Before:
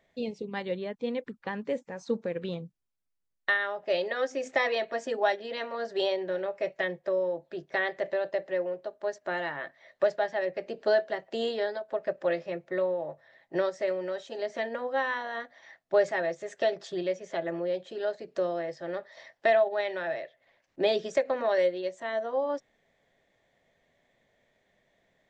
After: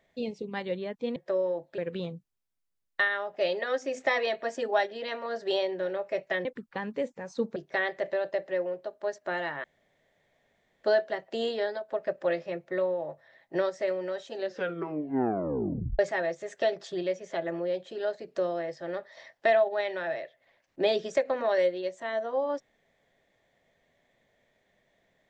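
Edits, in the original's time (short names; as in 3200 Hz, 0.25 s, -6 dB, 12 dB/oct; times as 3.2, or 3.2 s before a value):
1.16–2.27 swap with 6.94–7.56
9.64–10.84 room tone
14.33 tape stop 1.66 s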